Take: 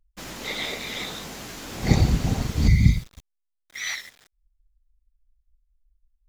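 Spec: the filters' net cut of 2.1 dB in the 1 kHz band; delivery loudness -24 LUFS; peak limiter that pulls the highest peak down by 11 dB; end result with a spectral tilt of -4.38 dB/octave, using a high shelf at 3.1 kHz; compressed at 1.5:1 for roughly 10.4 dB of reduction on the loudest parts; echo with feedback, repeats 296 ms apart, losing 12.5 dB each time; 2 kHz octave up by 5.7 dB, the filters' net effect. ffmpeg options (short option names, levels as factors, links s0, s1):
-af "equalizer=f=1000:t=o:g=-4.5,equalizer=f=2000:t=o:g=8.5,highshelf=f=3100:g=-4.5,acompressor=threshold=0.00891:ratio=1.5,alimiter=limit=0.0668:level=0:latency=1,aecho=1:1:296|592|888:0.237|0.0569|0.0137,volume=3.55"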